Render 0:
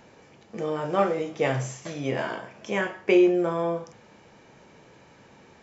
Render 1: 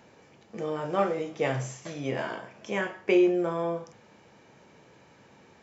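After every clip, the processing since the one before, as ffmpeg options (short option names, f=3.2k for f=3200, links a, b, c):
-af "highpass=59,volume=-3dB"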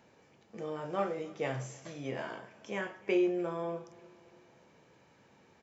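-af "aecho=1:1:298|596|894|1192:0.0708|0.0382|0.0206|0.0111,volume=-7dB"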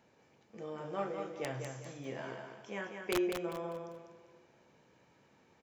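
-af "aeval=exprs='(mod(10.6*val(0)+1,2)-1)/10.6':c=same,aecho=1:1:198|396|594|792:0.501|0.17|0.0579|0.0197,volume=-4.5dB"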